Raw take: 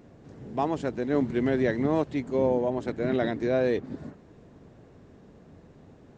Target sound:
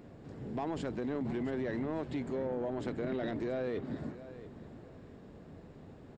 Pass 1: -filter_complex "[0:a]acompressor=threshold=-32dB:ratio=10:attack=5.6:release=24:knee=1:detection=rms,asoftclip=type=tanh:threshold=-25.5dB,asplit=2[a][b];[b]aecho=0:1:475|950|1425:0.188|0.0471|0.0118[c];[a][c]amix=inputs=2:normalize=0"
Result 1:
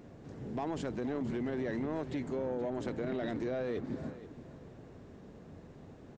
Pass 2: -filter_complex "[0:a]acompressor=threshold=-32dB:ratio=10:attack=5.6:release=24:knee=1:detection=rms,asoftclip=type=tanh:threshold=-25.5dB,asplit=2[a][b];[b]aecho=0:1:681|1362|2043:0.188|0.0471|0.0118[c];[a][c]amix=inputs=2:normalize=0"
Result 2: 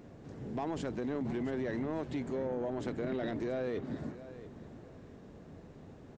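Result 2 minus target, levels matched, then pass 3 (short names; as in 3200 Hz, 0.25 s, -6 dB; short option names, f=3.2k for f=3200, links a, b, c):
8000 Hz band +3.0 dB
-filter_complex "[0:a]acompressor=threshold=-32dB:ratio=10:attack=5.6:release=24:knee=1:detection=rms,equalizer=f=6.1k:w=5.6:g=-8.5,asoftclip=type=tanh:threshold=-25.5dB,asplit=2[a][b];[b]aecho=0:1:681|1362|2043:0.188|0.0471|0.0118[c];[a][c]amix=inputs=2:normalize=0"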